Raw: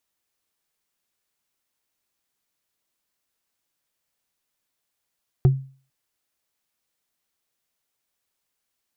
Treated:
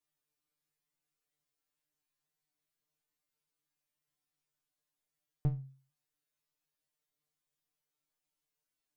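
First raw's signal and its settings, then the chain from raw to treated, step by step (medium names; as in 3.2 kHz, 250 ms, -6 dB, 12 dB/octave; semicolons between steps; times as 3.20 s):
wood hit, lowest mode 134 Hz, decay 0.40 s, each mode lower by 9.5 dB, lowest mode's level -9 dB
bass shelf 260 Hz +8 dB; compression, threshold -17 dBFS; feedback comb 150 Hz, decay 0.26 s, harmonics all, mix 100%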